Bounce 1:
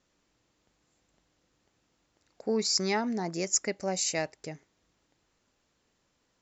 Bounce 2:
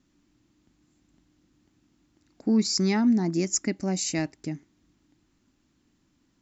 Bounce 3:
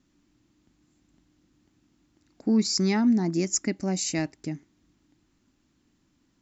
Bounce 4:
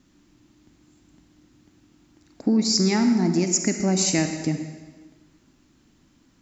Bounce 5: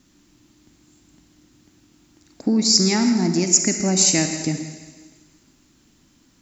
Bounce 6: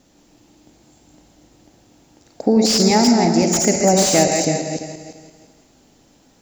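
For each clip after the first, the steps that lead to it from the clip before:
resonant low shelf 380 Hz +7.5 dB, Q 3
nothing audible
compressor 5:1, threshold -26 dBFS, peak gain reduction 8 dB; on a send at -6 dB: reverb RT60 1.4 s, pre-delay 38 ms; on the sum: gain +8 dB
high shelf 4000 Hz +8.5 dB; thinning echo 0.163 s, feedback 56%, high-pass 960 Hz, level -15 dB; gain +1 dB
regenerating reverse delay 0.171 s, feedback 44%, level -5.5 dB; band shelf 610 Hz +11.5 dB 1.2 oct; slew limiter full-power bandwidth 710 Hz; gain +1.5 dB

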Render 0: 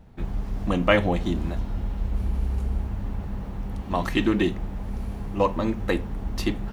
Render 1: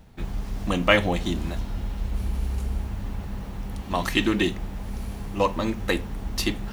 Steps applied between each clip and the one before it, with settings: high shelf 2200 Hz +10.5 dB; reverse; upward compressor, threshold -34 dBFS; reverse; gain -1.5 dB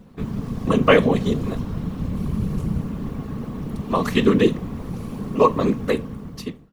ending faded out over 0.99 s; whisperiser; small resonant body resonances 220/440/1100 Hz, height 12 dB, ringing for 25 ms; gain -2 dB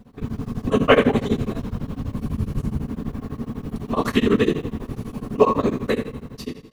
two-slope reverb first 0.61 s, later 2.3 s, from -18 dB, DRR 2 dB; beating tremolo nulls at 12 Hz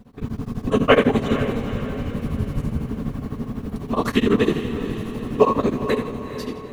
diffused feedback echo 0.454 s, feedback 51%, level -10.5 dB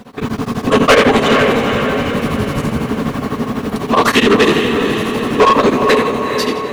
overdrive pedal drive 26 dB, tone 7400 Hz, clips at -1 dBFS

